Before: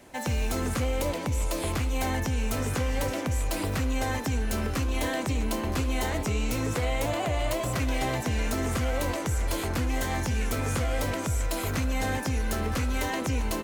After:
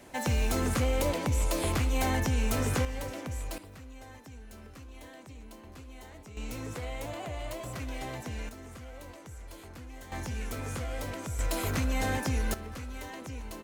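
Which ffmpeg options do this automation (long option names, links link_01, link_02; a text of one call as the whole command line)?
ffmpeg -i in.wav -af "asetnsamples=nb_out_samples=441:pad=0,asendcmd='2.85 volume volume -8.5dB;3.58 volume volume -20dB;6.37 volume volume -10dB;8.49 volume volume -18dB;10.12 volume volume -8dB;11.39 volume volume -1.5dB;12.54 volume volume -12.5dB',volume=0dB" out.wav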